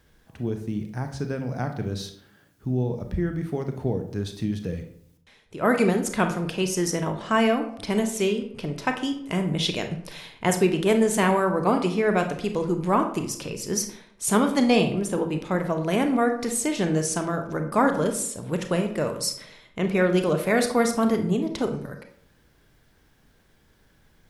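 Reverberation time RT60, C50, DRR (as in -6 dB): 0.65 s, 9.0 dB, 6.0 dB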